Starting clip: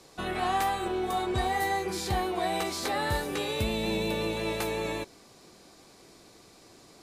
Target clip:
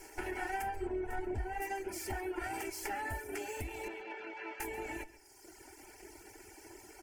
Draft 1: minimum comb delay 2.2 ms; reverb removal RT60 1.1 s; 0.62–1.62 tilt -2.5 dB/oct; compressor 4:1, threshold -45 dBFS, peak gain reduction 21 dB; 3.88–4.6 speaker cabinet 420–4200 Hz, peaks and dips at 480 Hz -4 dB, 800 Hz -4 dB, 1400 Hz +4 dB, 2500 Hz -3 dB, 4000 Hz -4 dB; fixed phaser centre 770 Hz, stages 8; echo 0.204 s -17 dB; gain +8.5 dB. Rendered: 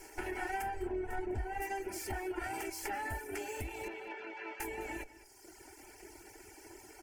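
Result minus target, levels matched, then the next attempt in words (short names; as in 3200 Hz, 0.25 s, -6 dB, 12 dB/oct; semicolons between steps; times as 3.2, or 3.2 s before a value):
echo 68 ms late
minimum comb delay 2.2 ms; reverb removal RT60 1.1 s; 0.62–1.62 tilt -2.5 dB/oct; compressor 4:1, threshold -45 dBFS, peak gain reduction 21 dB; 3.88–4.6 speaker cabinet 420–4200 Hz, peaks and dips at 480 Hz -4 dB, 800 Hz -4 dB, 1400 Hz +4 dB, 2500 Hz -3 dB, 4000 Hz -4 dB; fixed phaser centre 770 Hz, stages 8; echo 0.136 s -17 dB; gain +8.5 dB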